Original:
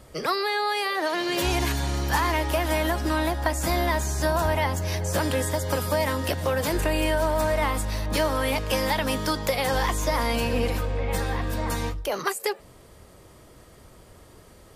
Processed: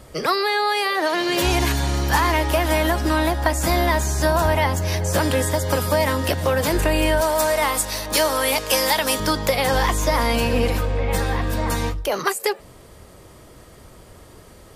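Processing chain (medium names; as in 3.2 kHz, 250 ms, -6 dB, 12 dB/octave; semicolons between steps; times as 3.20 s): 7.21–9.20 s: tone controls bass -12 dB, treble +8 dB; trim +5 dB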